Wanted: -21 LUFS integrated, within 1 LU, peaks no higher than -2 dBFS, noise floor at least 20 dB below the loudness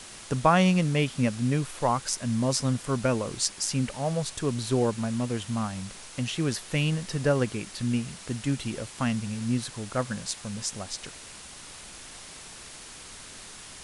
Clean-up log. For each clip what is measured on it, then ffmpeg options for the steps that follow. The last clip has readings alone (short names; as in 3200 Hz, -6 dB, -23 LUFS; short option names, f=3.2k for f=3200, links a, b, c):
noise floor -45 dBFS; noise floor target -48 dBFS; loudness -28.0 LUFS; peak -6.5 dBFS; loudness target -21.0 LUFS
-> -af "afftdn=nr=6:nf=-45"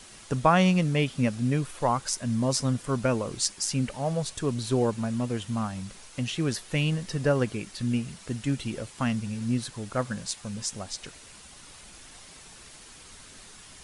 noise floor -49 dBFS; loudness -28.0 LUFS; peak -6.5 dBFS; loudness target -21.0 LUFS
-> -af "volume=7dB,alimiter=limit=-2dB:level=0:latency=1"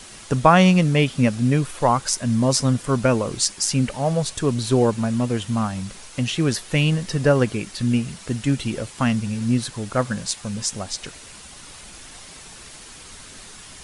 loudness -21.0 LUFS; peak -2.0 dBFS; noise floor -42 dBFS